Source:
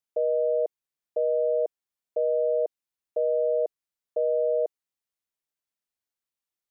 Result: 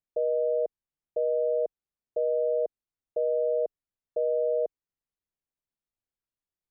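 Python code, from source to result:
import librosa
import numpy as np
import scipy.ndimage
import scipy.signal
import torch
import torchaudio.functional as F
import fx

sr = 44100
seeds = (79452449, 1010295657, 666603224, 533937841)

y = fx.tilt_eq(x, sr, slope=-3.0)
y = y * 10.0 ** (-4.5 / 20.0)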